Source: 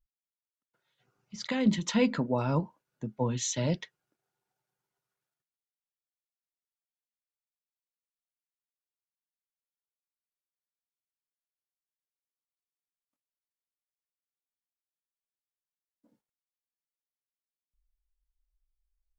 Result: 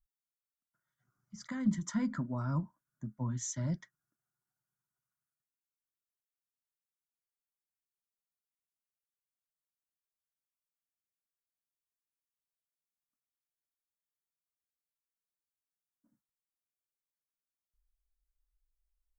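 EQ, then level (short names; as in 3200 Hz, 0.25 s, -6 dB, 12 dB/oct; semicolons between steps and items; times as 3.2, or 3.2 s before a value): bell 830 Hz -13 dB 0.48 oct; bell 4000 Hz -13.5 dB 0.54 oct; fixed phaser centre 1100 Hz, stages 4; -2.0 dB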